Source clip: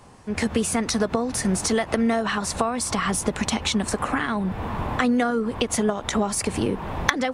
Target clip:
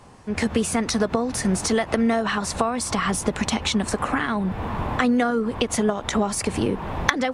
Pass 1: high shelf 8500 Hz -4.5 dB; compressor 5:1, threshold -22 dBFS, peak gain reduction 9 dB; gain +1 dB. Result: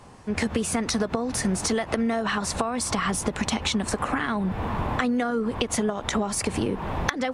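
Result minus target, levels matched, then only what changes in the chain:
compressor: peak gain reduction +9 dB
remove: compressor 5:1, threshold -22 dBFS, peak gain reduction 9 dB

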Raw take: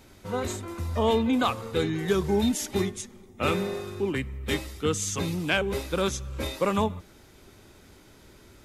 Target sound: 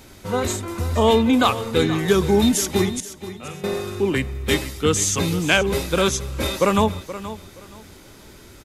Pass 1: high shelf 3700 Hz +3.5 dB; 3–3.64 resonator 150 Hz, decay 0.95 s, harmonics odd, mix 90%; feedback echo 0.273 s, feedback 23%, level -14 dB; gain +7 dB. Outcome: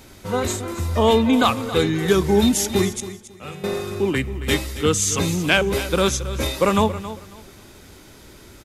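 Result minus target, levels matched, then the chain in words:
echo 0.202 s early
high shelf 3700 Hz +3.5 dB; 3–3.64 resonator 150 Hz, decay 0.95 s, harmonics odd, mix 90%; feedback echo 0.475 s, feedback 23%, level -14 dB; gain +7 dB

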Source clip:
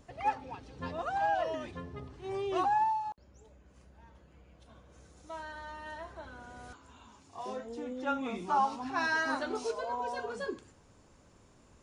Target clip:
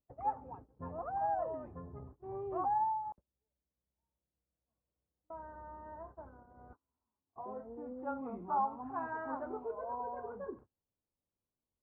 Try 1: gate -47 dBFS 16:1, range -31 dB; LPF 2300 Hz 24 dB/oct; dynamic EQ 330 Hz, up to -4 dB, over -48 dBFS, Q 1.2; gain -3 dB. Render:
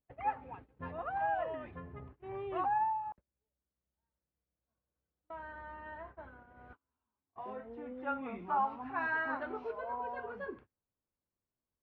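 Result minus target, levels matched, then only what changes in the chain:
2000 Hz band +11.5 dB
change: LPF 1100 Hz 24 dB/oct

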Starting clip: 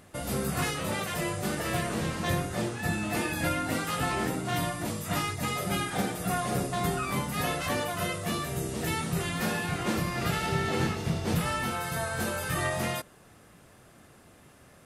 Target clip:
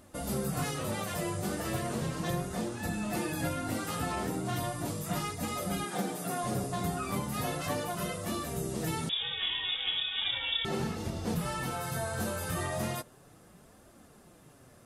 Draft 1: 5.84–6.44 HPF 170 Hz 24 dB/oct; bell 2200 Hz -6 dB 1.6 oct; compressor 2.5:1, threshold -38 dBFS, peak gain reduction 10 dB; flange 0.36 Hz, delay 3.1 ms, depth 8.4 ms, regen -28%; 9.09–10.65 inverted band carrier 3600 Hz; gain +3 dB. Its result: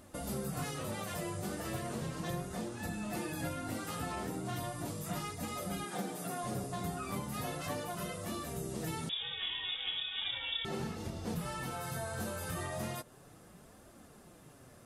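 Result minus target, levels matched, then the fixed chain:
compressor: peak gain reduction +5.5 dB
5.84–6.44 HPF 170 Hz 24 dB/oct; bell 2200 Hz -6 dB 1.6 oct; compressor 2.5:1, threshold -29 dBFS, peak gain reduction 4.5 dB; flange 0.36 Hz, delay 3.1 ms, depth 8.4 ms, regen -28%; 9.09–10.65 inverted band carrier 3600 Hz; gain +3 dB

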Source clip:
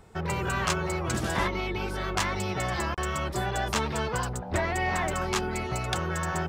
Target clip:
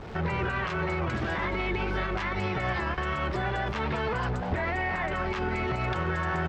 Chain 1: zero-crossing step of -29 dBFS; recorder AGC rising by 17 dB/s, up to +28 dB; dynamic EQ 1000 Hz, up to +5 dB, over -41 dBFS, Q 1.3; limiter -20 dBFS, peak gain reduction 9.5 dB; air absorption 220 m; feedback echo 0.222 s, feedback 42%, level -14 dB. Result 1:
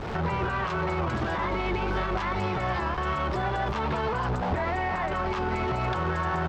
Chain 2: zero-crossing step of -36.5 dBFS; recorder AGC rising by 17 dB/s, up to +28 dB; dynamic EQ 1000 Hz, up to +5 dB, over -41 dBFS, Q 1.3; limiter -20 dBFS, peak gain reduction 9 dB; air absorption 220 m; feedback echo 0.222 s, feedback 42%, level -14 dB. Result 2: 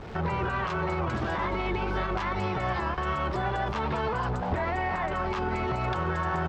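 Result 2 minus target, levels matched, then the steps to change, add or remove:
2000 Hz band -3.0 dB
change: dynamic EQ 2000 Hz, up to +5 dB, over -41 dBFS, Q 1.3

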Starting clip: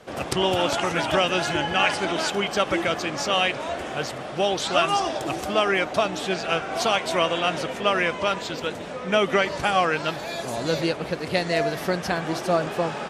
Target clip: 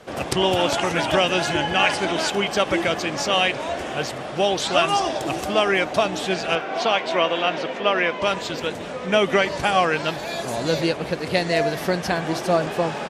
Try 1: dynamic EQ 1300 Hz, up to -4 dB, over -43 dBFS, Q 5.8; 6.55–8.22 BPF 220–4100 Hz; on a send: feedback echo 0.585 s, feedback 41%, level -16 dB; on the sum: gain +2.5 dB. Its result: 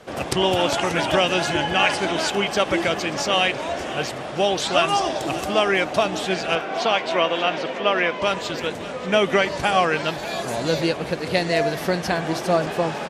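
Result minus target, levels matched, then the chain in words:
echo-to-direct +7 dB
dynamic EQ 1300 Hz, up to -4 dB, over -43 dBFS, Q 5.8; 6.55–8.22 BPF 220–4100 Hz; on a send: feedback echo 0.585 s, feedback 41%, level -23 dB; on the sum: gain +2.5 dB

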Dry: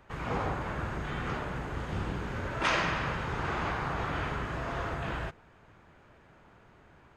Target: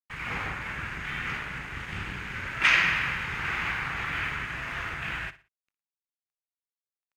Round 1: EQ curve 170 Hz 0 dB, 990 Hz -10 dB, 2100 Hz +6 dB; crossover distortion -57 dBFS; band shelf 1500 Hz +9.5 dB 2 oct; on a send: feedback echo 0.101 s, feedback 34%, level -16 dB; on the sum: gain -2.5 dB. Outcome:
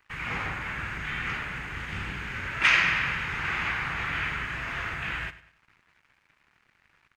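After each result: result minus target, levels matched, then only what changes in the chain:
echo 42 ms late; crossover distortion: distortion -8 dB
change: feedback echo 59 ms, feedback 34%, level -16 dB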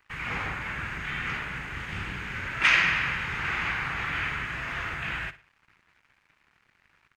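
crossover distortion: distortion -8 dB
change: crossover distortion -48 dBFS

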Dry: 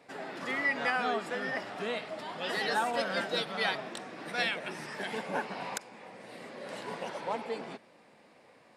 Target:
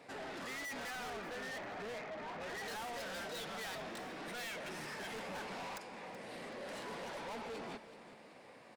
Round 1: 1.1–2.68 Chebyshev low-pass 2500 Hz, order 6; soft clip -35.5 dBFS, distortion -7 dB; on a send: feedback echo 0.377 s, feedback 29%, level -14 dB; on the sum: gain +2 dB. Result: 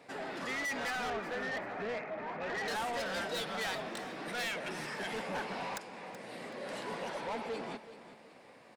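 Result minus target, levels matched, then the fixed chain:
soft clip: distortion -4 dB
1.1–2.68 Chebyshev low-pass 2500 Hz, order 6; soft clip -44.5 dBFS, distortion -2 dB; on a send: feedback echo 0.377 s, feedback 29%, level -14 dB; on the sum: gain +2 dB

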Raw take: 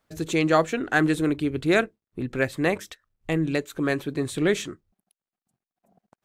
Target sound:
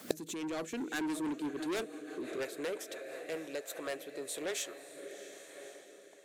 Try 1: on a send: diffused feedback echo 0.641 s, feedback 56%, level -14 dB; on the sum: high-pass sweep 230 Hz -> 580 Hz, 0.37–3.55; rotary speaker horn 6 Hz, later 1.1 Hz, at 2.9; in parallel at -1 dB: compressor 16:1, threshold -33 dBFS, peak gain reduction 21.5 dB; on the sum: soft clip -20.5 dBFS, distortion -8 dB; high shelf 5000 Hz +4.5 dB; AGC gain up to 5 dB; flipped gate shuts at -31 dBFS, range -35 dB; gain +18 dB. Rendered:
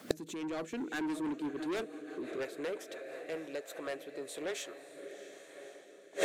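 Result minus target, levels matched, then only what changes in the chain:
8000 Hz band -4.5 dB
change: high shelf 5000 Hz +13.5 dB

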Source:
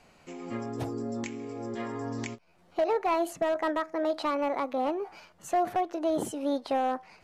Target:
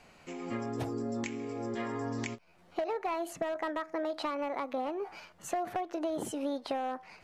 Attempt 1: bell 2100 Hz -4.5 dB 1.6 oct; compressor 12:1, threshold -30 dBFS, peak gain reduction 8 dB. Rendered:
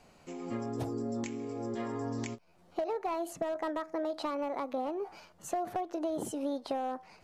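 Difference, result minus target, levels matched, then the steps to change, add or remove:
2000 Hz band -5.0 dB
change: bell 2100 Hz +2.5 dB 1.6 oct

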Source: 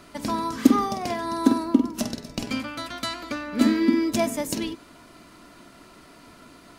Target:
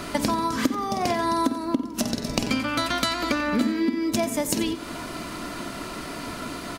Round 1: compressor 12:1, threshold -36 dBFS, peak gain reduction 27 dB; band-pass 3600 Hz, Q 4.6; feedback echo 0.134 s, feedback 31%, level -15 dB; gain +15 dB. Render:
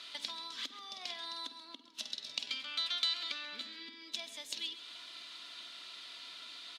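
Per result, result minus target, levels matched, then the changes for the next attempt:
echo 45 ms late; 4000 Hz band +9.5 dB
change: feedback echo 89 ms, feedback 31%, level -15 dB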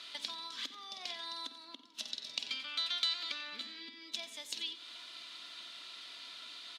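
4000 Hz band +9.5 dB
remove: band-pass 3600 Hz, Q 4.6

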